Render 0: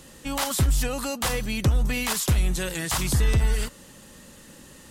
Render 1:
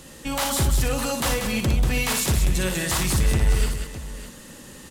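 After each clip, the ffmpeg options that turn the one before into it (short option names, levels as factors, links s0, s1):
-filter_complex "[0:a]asoftclip=type=tanh:threshold=0.0944,asplit=2[s0][s1];[s1]aecho=0:1:59|189|320|608:0.501|0.447|0.126|0.224[s2];[s0][s2]amix=inputs=2:normalize=0,volume=1.41"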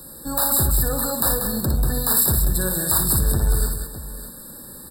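-filter_complex "[0:a]acrossover=split=110[s0][s1];[s1]aexciter=amount=5.3:drive=6.9:freq=8900[s2];[s0][s2]amix=inputs=2:normalize=0,afftfilt=real='re*eq(mod(floor(b*sr/1024/1800),2),0)':imag='im*eq(mod(floor(b*sr/1024/1800),2),0)':win_size=1024:overlap=0.75"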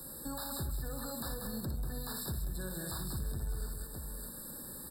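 -filter_complex "[0:a]acrossover=split=5400[s0][s1];[s1]acompressor=threshold=0.0355:ratio=4:attack=1:release=60[s2];[s0][s2]amix=inputs=2:normalize=0,acrossover=split=330|1800[s3][s4][s5];[s4]alimiter=level_in=1.33:limit=0.0631:level=0:latency=1:release=277,volume=0.75[s6];[s3][s6][s5]amix=inputs=3:normalize=0,acompressor=threshold=0.02:ratio=2.5,volume=0.501"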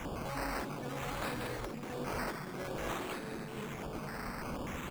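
-af "acrusher=samples=10:mix=1:aa=0.000001:lfo=1:lforange=6:lforate=0.53,afftfilt=real='re*lt(hypot(re,im),0.0447)':imag='im*lt(hypot(re,im),0.0447)':win_size=1024:overlap=0.75,tiltshelf=f=1200:g=4,volume=1.58"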